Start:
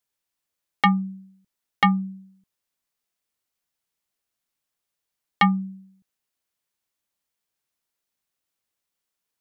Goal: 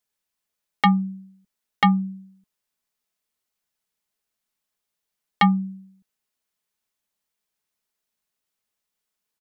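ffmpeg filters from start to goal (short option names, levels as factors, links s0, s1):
-af "aecho=1:1:4.7:0.34"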